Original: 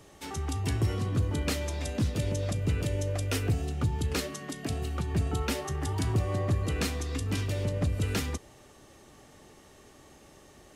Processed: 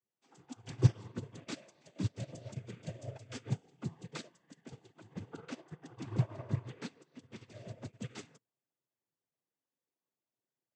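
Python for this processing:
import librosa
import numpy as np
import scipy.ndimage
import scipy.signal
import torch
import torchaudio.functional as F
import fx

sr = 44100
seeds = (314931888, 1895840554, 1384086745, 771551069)

y = fx.lowpass(x, sr, hz=3500.0, slope=6, at=(5.14, 7.41))
y = fx.noise_vocoder(y, sr, seeds[0], bands=16)
y = fx.upward_expand(y, sr, threshold_db=-50.0, expansion=2.5)
y = y * librosa.db_to_amplitude(3.0)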